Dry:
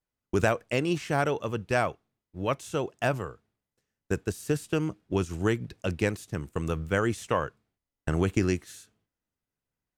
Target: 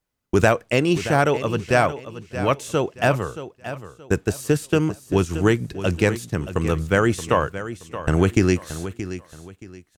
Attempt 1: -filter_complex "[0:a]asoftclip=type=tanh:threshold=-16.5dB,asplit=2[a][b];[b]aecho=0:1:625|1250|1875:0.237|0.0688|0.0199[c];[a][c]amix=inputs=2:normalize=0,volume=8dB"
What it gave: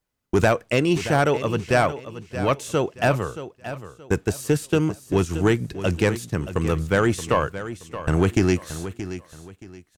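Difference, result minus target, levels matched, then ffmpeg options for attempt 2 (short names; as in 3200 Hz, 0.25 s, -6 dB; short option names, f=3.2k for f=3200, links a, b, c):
soft clip: distortion +18 dB
-filter_complex "[0:a]asoftclip=type=tanh:threshold=-5.5dB,asplit=2[a][b];[b]aecho=0:1:625|1250|1875:0.237|0.0688|0.0199[c];[a][c]amix=inputs=2:normalize=0,volume=8dB"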